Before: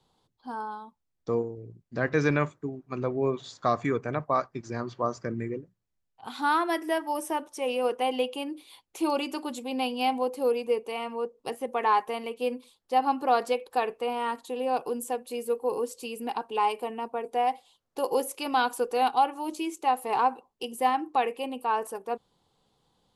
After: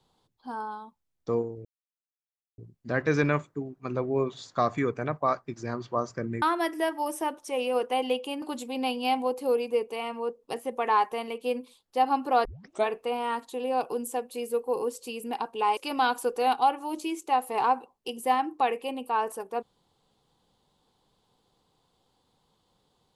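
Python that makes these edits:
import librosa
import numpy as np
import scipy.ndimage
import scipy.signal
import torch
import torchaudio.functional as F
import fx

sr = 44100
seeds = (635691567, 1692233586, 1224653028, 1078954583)

y = fx.edit(x, sr, fx.insert_silence(at_s=1.65, length_s=0.93),
    fx.cut(start_s=5.49, length_s=1.02),
    fx.cut(start_s=8.51, length_s=0.87),
    fx.tape_start(start_s=13.41, length_s=0.42),
    fx.cut(start_s=16.73, length_s=1.59), tone=tone)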